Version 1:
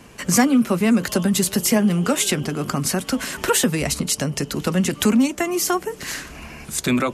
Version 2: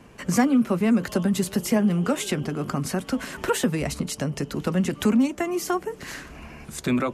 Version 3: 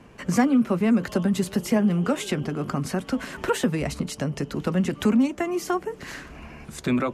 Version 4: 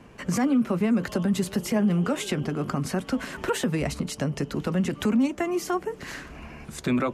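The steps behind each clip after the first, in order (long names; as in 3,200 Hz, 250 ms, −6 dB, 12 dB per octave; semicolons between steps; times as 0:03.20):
high-shelf EQ 2,700 Hz −9 dB; level −3 dB
high-shelf EQ 6,200 Hz −7 dB
brickwall limiter −15.5 dBFS, peak gain reduction 8 dB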